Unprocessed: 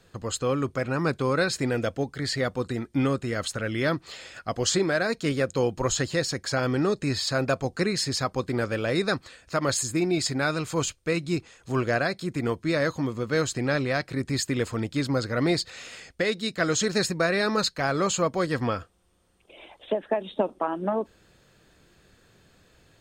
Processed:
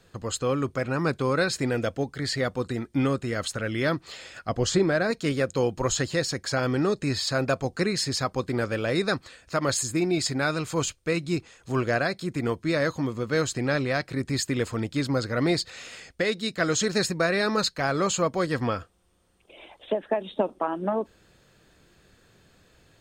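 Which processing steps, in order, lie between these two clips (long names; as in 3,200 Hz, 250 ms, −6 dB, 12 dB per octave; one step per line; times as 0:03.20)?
0:04.49–0:05.11: spectral tilt −1.5 dB per octave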